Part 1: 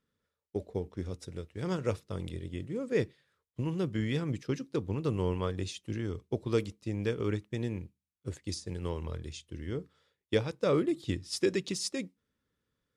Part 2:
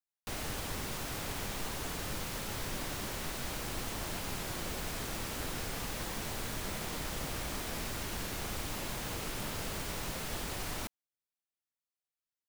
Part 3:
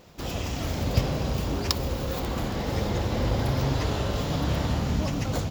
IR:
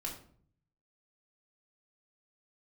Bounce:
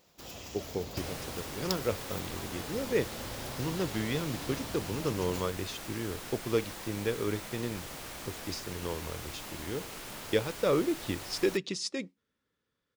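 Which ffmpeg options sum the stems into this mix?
-filter_complex "[0:a]lowpass=6200,volume=1.26[s0];[1:a]adelay=700,volume=0.708[s1];[2:a]highshelf=f=4300:g=9,volume=0.224[s2];[s0][s1][s2]amix=inputs=3:normalize=0,lowshelf=f=190:g=-8.5"

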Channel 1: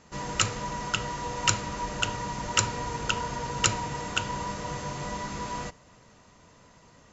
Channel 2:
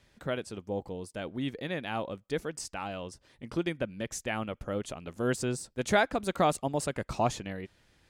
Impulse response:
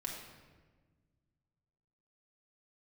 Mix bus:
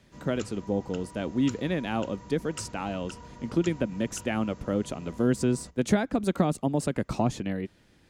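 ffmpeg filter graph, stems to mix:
-filter_complex "[0:a]equalizer=f=65:t=o:w=0.77:g=12.5,volume=0.126[s0];[1:a]volume=1.19[s1];[s0][s1]amix=inputs=2:normalize=0,equalizer=f=240:t=o:w=1.8:g=8.5,acrossover=split=280[s2][s3];[s3]acompressor=threshold=0.0562:ratio=10[s4];[s2][s4]amix=inputs=2:normalize=0"

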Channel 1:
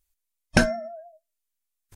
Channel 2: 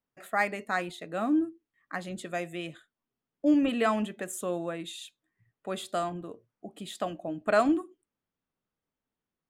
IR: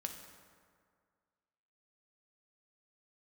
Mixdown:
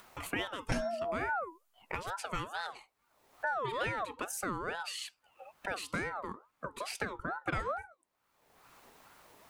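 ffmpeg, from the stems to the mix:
-filter_complex "[0:a]aecho=1:1:7.5:0.75,alimiter=limit=0.224:level=0:latency=1:release=23,adelay=150,volume=1.41[s0];[1:a]acompressor=mode=upward:threshold=0.0316:ratio=2.5,aeval=exprs='val(0)*sin(2*PI*920*n/s+920*0.3/2.3*sin(2*PI*2.3*n/s))':c=same,volume=1[s1];[s0][s1]amix=inputs=2:normalize=0,acompressor=threshold=0.0316:ratio=16"

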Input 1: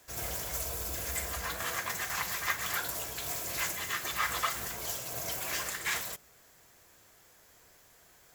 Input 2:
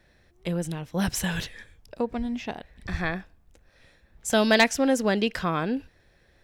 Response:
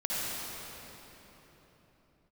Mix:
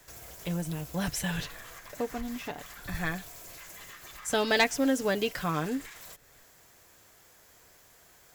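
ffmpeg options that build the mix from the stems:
-filter_complex "[0:a]acompressor=threshold=0.0112:ratio=6,alimiter=level_in=5.62:limit=0.0631:level=0:latency=1:release=206,volume=0.178,volume=1.26[s0];[1:a]aecho=1:1:6.9:0.52,volume=0.562[s1];[s0][s1]amix=inputs=2:normalize=0"

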